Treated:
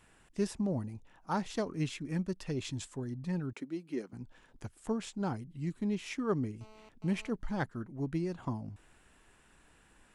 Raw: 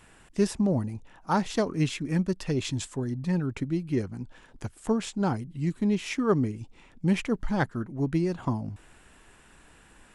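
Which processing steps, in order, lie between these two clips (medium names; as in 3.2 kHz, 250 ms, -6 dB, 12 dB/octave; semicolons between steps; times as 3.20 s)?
3.53–4.13 s: high-pass 230 Hz 24 dB/octave; 6.61–7.30 s: mobile phone buzz -49 dBFS; trim -8 dB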